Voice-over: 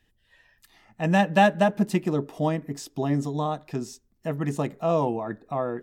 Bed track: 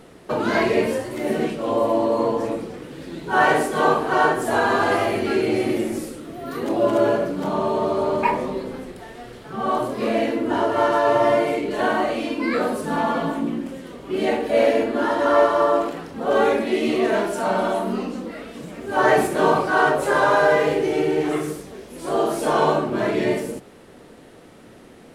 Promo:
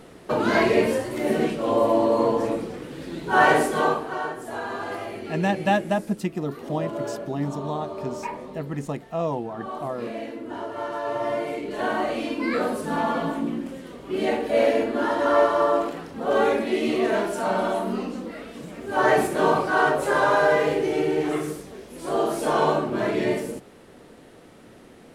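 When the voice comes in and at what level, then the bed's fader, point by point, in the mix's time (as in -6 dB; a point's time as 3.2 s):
4.30 s, -3.0 dB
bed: 3.7 s 0 dB
4.22 s -12 dB
10.86 s -12 dB
12.19 s -2.5 dB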